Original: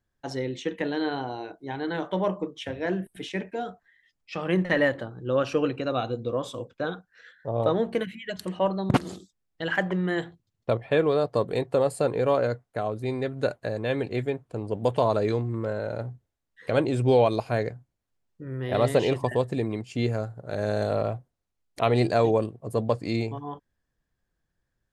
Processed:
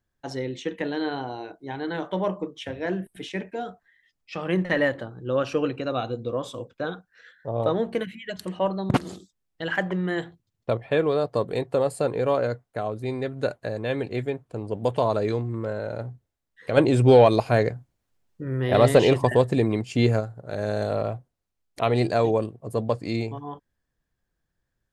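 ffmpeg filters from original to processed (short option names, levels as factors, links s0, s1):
-filter_complex "[0:a]asplit=3[s0][s1][s2];[s0]afade=t=out:st=16.76:d=0.02[s3];[s1]acontrast=53,afade=t=in:st=16.76:d=0.02,afade=t=out:st=20.19:d=0.02[s4];[s2]afade=t=in:st=20.19:d=0.02[s5];[s3][s4][s5]amix=inputs=3:normalize=0"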